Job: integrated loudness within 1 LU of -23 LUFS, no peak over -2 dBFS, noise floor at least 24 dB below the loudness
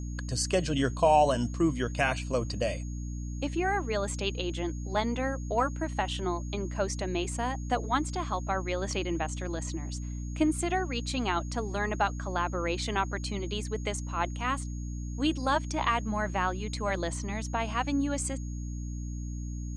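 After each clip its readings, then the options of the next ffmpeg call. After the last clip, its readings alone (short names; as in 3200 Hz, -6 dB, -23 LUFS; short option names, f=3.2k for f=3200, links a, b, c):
hum 60 Hz; harmonics up to 300 Hz; hum level -33 dBFS; steady tone 6600 Hz; tone level -51 dBFS; loudness -31.0 LUFS; peak -11.5 dBFS; loudness target -23.0 LUFS
-> -af "bandreject=f=60:t=h:w=6,bandreject=f=120:t=h:w=6,bandreject=f=180:t=h:w=6,bandreject=f=240:t=h:w=6,bandreject=f=300:t=h:w=6"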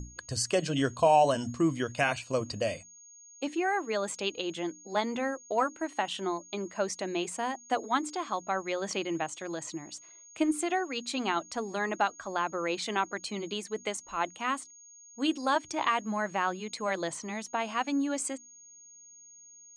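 hum none; steady tone 6600 Hz; tone level -51 dBFS
-> -af "bandreject=f=6.6k:w=30"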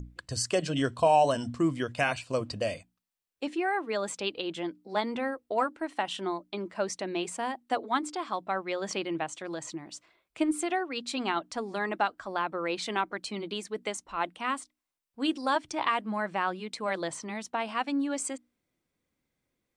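steady tone none; loudness -31.5 LUFS; peak -12.0 dBFS; loudness target -23.0 LUFS
-> -af "volume=8.5dB"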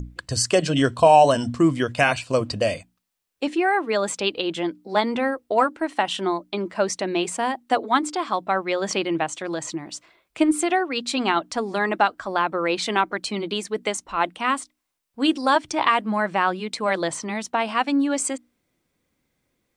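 loudness -23.0 LUFS; peak -3.5 dBFS; noise floor -75 dBFS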